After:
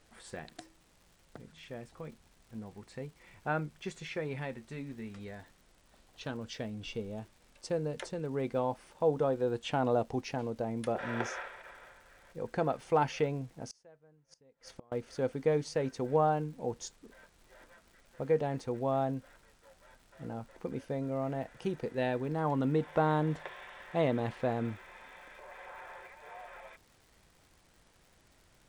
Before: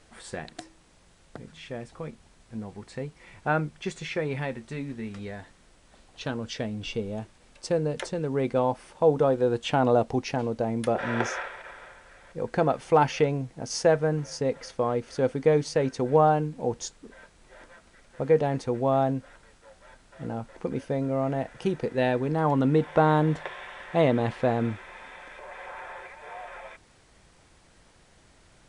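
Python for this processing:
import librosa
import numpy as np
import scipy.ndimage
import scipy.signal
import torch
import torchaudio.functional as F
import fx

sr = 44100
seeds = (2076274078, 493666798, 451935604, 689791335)

y = fx.dmg_crackle(x, sr, seeds[0], per_s=190.0, level_db=-45.0)
y = fx.gate_flip(y, sr, shuts_db=-27.0, range_db=-30, at=(13.65, 14.92))
y = y * 10.0 ** (-7.5 / 20.0)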